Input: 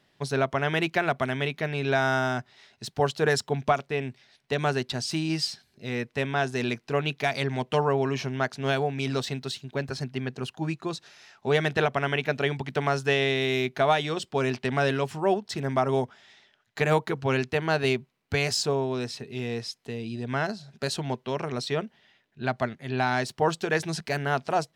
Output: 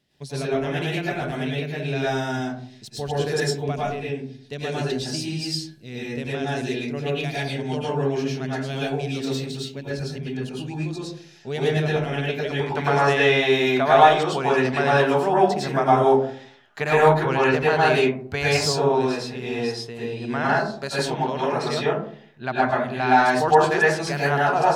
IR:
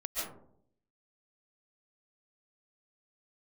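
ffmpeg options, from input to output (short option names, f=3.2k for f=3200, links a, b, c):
-filter_complex "[0:a]asetnsamples=n=441:p=0,asendcmd='12.5 equalizer g 4.5',equalizer=f=1.1k:w=0.72:g=-11[a];[1:a]atrim=start_sample=2205,asetrate=57330,aresample=44100[b];[a][b]afir=irnorm=-1:irlink=0,volume=3dB"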